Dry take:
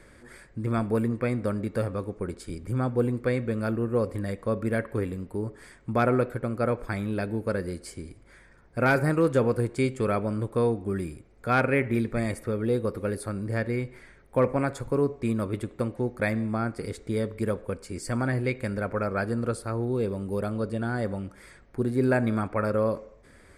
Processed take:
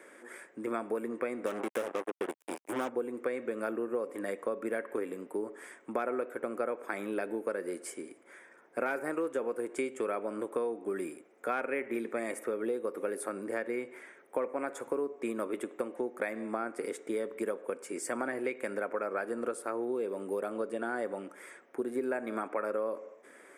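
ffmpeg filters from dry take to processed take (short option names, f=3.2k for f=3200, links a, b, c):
-filter_complex "[0:a]asettb=1/sr,asplit=3[a][b][c];[a]atrim=end=1.464[d];[b]atrim=start=1.46:end=2.89,asetpts=PTS-STARTPTS,afade=t=in:d=0.004:c=qsin,afade=t=out:st=1.426:d=0.004:c=qsin,acrusher=bits=4:mix=0:aa=0.5[e];[c]atrim=start=2.886[f];[d][e]acrossfade=d=0.004:c1=hsin:c2=qsin[g];[g][f]acrossfade=d=0.004:c1=qsin:c2=hsin,highpass=f=300:w=0.5412,highpass=f=300:w=1.3066,equalizer=f=4.4k:w=2.9:g=-14.5,acompressor=threshold=-32dB:ratio=6,volume=2dB"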